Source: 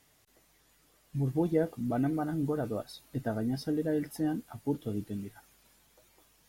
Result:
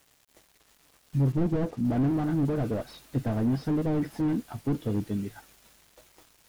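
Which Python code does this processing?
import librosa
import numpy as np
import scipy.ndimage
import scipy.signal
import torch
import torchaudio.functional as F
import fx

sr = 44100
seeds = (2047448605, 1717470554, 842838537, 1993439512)

y = fx.lowpass(x, sr, hz=1200.0, slope=12, at=(1.32, 1.85))
y = fx.quant_dither(y, sr, seeds[0], bits=10, dither='none')
y = fx.slew_limit(y, sr, full_power_hz=8.8)
y = y * librosa.db_to_amplitude(7.0)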